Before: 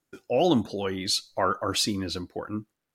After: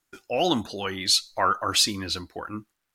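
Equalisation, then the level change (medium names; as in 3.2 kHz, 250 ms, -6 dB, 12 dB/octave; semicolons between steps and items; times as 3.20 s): graphic EQ 125/250/500 Hz -10/-6/-8 dB; +5.5 dB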